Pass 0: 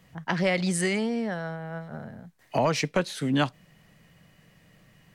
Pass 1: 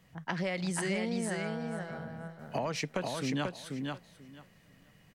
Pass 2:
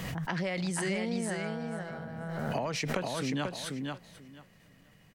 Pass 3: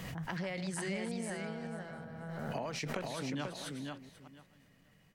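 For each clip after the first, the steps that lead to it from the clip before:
compressor 4:1, threshold -25 dBFS, peak gain reduction 6 dB; on a send: feedback echo 0.488 s, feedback 16%, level -4 dB; on the sum: gain -5 dB
backwards sustainer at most 24 dB/s
reverse delay 0.186 s, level -11 dB; gain -6 dB

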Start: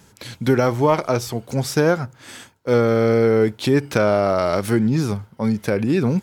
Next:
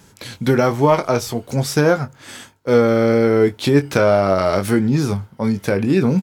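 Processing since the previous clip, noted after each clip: doubler 21 ms -9 dB; gain +2 dB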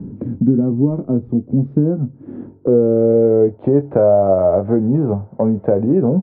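low-pass sweep 260 Hz -> 640 Hz, 2.03–3.61; air absorption 420 m; three-band squash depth 70%; gain -1.5 dB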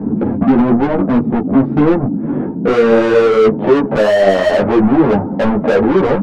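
band noise 140–290 Hz -32 dBFS; overdrive pedal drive 33 dB, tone 1500 Hz, clips at -1 dBFS; ensemble effect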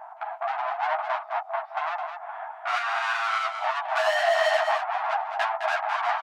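compressor, threshold -13 dBFS, peak gain reduction 8 dB; brick-wall FIR high-pass 630 Hz; echo 0.211 s -7.5 dB

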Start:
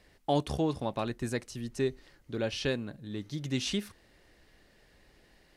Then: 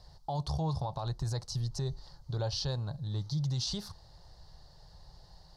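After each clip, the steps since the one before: EQ curve 160 Hz 0 dB, 230 Hz -23 dB, 420 Hz -16 dB, 890 Hz -1 dB, 2400 Hz -28 dB, 4500 Hz +1 dB, 8600 Hz -15 dB; in parallel at -2 dB: compressor, threshold -42 dBFS, peak gain reduction 12.5 dB; on the sum: limiter -31.5 dBFS, peak gain reduction 10.5 dB; gain +6 dB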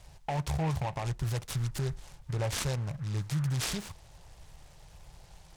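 noise-modulated delay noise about 1300 Hz, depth 0.071 ms; gain +2 dB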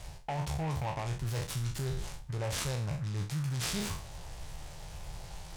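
spectral trails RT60 0.43 s; reverse; compressor 6:1, threshold -39 dBFS, peak gain reduction 12 dB; reverse; gain +7 dB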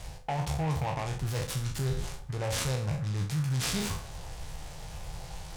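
reverb RT60 0.75 s, pre-delay 3 ms, DRR 10.5 dB; gain +3 dB

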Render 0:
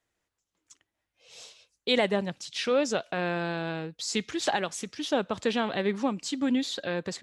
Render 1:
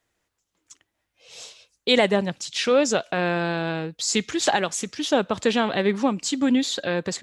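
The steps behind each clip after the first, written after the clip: dynamic EQ 7100 Hz, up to +5 dB, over -53 dBFS, Q 3.6; gain +6 dB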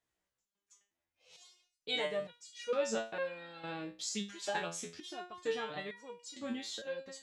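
stepped resonator 2.2 Hz 63–480 Hz; gain -4.5 dB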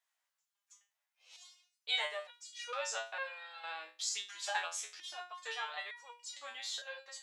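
HPF 780 Hz 24 dB/oct; gain +2.5 dB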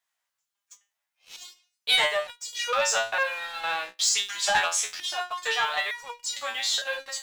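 sample leveller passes 2; gain +7.5 dB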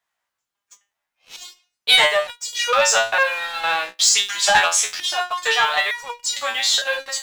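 mismatched tape noise reduction decoder only; gain +8 dB

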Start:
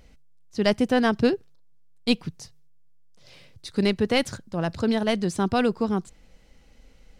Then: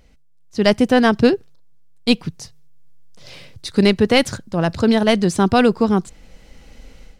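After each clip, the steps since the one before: AGC gain up to 12 dB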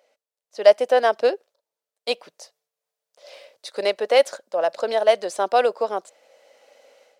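ladder high-pass 530 Hz, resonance 70%; gain +4.5 dB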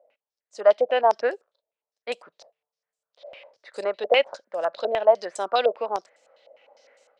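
stepped low-pass 9.9 Hz 640–7700 Hz; gain -6 dB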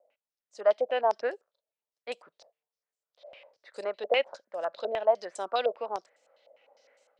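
vibrato 1.6 Hz 22 cents; gain -6.5 dB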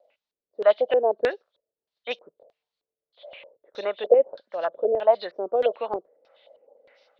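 nonlinear frequency compression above 2900 Hz 1.5:1; LFO low-pass square 1.6 Hz 450–3900 Hz; gain +5 dB

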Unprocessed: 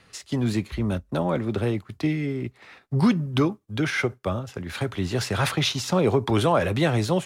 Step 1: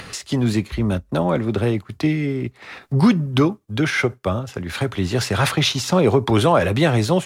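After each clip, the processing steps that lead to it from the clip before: upward compressor, threshold -30 dBFS; gain +5 dB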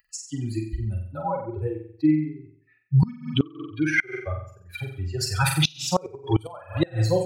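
per-bin expansion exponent 3; flutter echo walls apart 7.8 m, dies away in 0.56 s; flipped gate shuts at -12 dBFS, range -26 dB; gain +4 dB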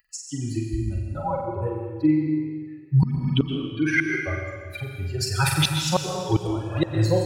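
plate-style reverb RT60 1.6 s, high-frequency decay 0.9×, pre-delay 0.105 s, DRR 4 dB

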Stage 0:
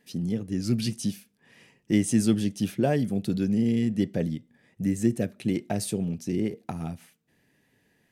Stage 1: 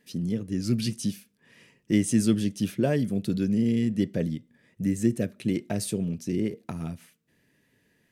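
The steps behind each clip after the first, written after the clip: bell 780 Hz -11.5 dB 0.21 oct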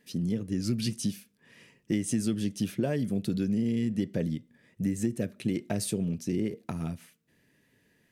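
compressor, threshold -24 dBFS, peak gain reduction 8 dB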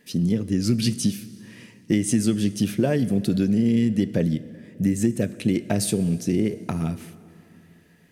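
plate-style reverb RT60 3.1 s, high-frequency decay 0.7×, DRR 15.5 dB; gain +7.5 dB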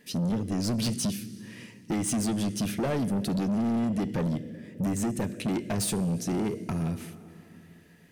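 soft clip -24 dBFS, distortion -8 dB

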